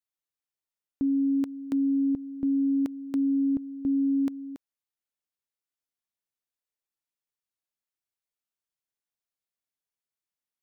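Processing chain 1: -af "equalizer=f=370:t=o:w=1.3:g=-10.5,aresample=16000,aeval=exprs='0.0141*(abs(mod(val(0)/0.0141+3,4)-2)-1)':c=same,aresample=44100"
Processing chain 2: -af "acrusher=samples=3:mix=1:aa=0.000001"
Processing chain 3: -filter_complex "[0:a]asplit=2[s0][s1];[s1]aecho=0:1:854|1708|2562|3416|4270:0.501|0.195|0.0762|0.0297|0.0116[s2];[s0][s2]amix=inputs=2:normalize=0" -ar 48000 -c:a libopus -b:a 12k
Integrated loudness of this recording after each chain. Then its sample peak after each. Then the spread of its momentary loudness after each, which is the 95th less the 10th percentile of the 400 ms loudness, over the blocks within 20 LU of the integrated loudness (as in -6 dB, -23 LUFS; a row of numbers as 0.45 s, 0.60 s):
-44.0 LUFS, -27.0 LUFS, -26.0 LUFS; -37.0 dBFS, -21.0 dBFS, -17.5 dBFS; 3 LU, 6 LU, 17 LU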